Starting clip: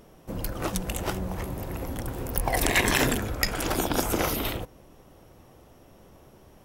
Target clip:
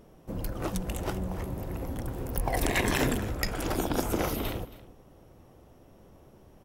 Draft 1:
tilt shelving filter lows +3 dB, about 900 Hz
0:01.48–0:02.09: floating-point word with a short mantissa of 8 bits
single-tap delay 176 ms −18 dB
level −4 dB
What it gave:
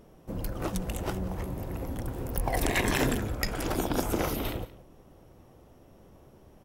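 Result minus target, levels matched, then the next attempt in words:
echo 97 ms early
tilt shelving filter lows +3 dB, about 900 Hz
0:01.48–0:02.09: floating-point word with a short mantissa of 8 bits
single-tap delay 273 ms −18 dB
level −4 dB

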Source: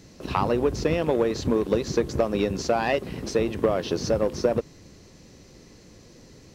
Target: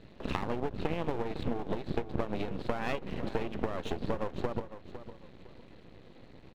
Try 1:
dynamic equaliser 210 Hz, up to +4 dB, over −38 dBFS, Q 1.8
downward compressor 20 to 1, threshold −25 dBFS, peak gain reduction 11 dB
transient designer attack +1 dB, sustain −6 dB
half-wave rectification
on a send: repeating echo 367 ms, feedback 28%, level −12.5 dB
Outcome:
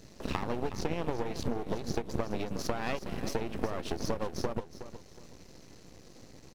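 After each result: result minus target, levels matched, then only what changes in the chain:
echo 139 ms early; 4,000 Hz band +3.0 dB
change: repeating echo 506 ms, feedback 28%, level −12.5 dB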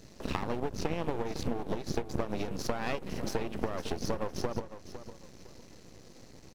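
4,000 Hz band +3.0 dB
add after dynamic equaliser: Butterworth low-pass 4,000 Hz 72 dB per octave

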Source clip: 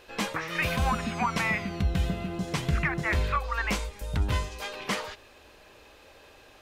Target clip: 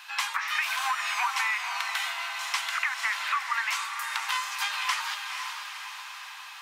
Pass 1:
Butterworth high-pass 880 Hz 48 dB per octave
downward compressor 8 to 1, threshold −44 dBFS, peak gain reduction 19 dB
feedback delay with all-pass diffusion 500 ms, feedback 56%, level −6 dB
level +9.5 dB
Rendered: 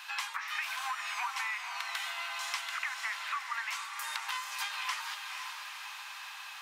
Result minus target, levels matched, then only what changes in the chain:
downward compressor: peak gain reduction +8 dB
change: downward compressor 8 to 1, threshold −35 dBFS, peak gain reduction 11 dB

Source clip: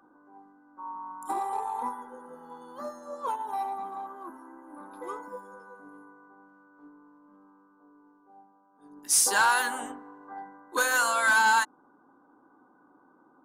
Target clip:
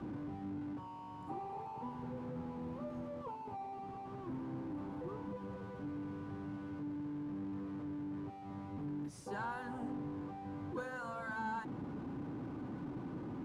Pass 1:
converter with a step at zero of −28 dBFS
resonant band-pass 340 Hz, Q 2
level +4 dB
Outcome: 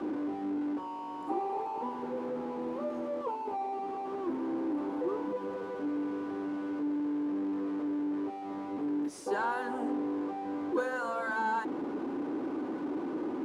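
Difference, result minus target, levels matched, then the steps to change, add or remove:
125 Hz band −18.0 dB
change: resonant band-pass 130 Hz, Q 2

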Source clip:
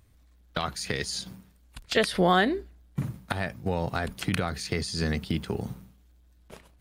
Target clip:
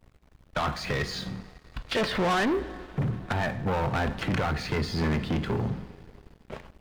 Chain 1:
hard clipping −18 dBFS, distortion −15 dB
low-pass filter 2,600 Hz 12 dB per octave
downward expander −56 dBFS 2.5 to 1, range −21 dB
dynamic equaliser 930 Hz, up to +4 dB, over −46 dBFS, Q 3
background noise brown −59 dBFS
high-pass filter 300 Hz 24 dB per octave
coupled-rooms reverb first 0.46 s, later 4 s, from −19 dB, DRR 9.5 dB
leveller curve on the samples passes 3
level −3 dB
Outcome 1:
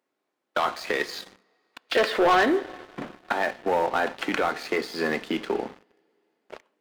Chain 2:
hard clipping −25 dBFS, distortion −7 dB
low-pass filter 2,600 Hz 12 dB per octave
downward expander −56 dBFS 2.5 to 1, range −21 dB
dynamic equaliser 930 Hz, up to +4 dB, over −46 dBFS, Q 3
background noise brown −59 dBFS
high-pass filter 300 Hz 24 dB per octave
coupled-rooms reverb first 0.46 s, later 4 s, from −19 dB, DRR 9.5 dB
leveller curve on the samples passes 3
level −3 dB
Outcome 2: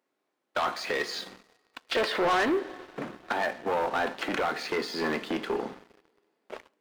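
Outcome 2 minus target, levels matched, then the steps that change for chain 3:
250 Hz band −3.5 dB
remove: high-pass filter 300 Hz 24 dB per octave

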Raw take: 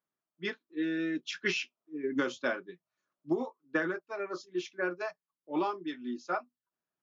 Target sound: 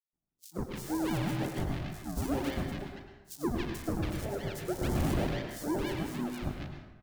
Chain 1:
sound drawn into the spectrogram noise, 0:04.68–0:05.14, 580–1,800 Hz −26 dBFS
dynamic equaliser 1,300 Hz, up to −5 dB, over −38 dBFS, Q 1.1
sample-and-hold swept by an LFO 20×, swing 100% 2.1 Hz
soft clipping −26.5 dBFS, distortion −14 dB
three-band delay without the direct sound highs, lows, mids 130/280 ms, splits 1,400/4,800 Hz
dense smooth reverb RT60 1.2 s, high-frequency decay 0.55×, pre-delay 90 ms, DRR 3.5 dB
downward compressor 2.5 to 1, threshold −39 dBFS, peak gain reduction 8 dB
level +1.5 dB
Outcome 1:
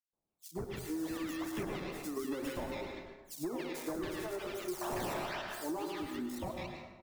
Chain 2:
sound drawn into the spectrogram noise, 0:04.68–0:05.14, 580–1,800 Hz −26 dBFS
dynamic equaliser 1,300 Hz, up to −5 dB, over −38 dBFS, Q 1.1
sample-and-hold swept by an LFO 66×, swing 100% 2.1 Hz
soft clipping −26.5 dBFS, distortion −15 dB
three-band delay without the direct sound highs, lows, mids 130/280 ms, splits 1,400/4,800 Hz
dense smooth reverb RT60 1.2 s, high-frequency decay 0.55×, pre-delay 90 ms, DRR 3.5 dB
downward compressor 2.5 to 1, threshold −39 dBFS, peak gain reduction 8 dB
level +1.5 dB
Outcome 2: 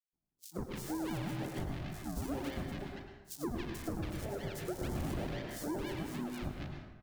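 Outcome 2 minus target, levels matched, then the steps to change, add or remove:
downward compressor: peak gain reduction +8 dB
remove: downward compressor 2.5 to 1, threshold −39 dBFS, peak gain reduction 8 dB

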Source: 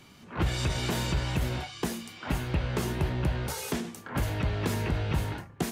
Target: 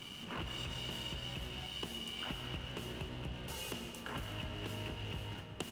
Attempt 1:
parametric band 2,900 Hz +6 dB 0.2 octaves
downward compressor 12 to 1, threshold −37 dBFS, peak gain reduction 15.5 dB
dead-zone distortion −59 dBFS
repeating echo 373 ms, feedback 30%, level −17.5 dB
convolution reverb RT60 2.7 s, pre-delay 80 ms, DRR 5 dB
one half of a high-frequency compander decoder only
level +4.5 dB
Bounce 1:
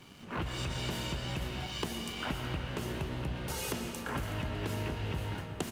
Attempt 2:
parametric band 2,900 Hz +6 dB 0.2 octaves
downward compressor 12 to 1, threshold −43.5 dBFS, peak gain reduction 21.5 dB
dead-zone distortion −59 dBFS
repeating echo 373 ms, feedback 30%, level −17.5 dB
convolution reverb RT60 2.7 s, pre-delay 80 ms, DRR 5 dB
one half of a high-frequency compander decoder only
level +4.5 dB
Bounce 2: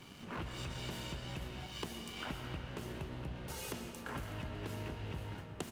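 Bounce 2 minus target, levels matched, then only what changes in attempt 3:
4,000 Hz band −5.0 dB
change: parametric band 2,900 Hz +17.5 dB 0.2 octaves

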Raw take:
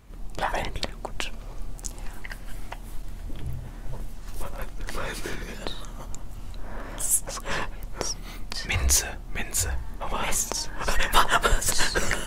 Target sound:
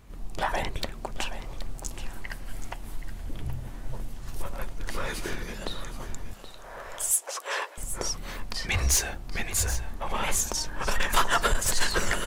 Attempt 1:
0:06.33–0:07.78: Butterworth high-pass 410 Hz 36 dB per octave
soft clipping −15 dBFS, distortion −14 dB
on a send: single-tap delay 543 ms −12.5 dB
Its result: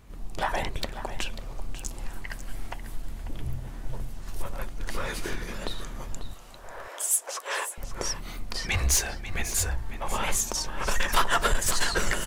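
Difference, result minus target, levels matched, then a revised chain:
echo 231 ms early
0:06.33–0:07.78: Butterworth high-pass 410 Hz 36 dB per octave
soft clipping −15 dBFS, distortion −14 dB
on a send: single-tap delay 774 ms −12.5 dB

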